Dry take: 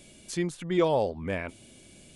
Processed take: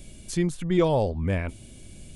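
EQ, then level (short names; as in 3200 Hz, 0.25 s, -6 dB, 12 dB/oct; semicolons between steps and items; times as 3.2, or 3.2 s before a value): low shelf 75 Hz +11.5 dB; low shelf 180 Hz +10 dB; high shelf 8900 Hz +7 dB; 0.0 dB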